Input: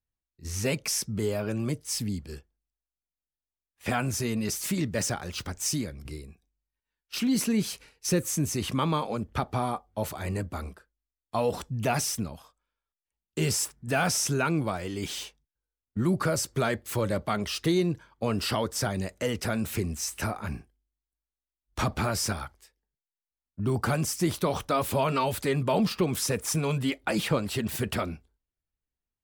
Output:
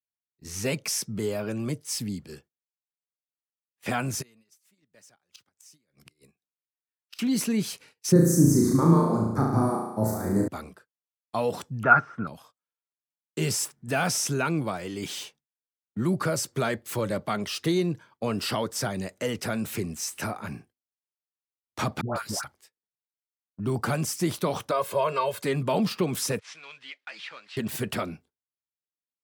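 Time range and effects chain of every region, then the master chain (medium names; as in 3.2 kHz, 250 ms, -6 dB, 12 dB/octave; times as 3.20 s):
4.21–7.19 s: high-pass 50 Hz 24 dB/octave + bass shelf 470 Hz -9.5 dB + inverted gate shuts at -29 dBFS, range -24 dB
8.12–10.48 s: Butterworth band-stop 2.9 kHz, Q 0.8 + resonant low shelf 460 Hz +6.5 dB, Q 1.5 + flutter echo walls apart 6.1 m, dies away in 0.9 s
11.83–12.27 s: de-esser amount 70% + resonant low-pass 1.4 kHz, resonance Q 15
22.01–22.44 s: gate -30 dBFS, range -23 dB + peaking EQ 2.4 kHz -6 dB 0.44 oct + phase dispersion highs, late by 141 ms, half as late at 860 Hz
24.71–25.43 s: high-pass 990 Hz 6 dB/octave + tilt shelf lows +7 dB, about 1.3 kHz + comb 1.9 ms, depth 79%
26.39–27.57 s: CVSD coder 64 kbps + Butterworth band-pass 3.2 kHz, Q 0.83 + tilt EQ -4 dB/octave
whole clip: high-pass 110 Hz 24 dB/octave; gate -55 dBFS, range -14 dB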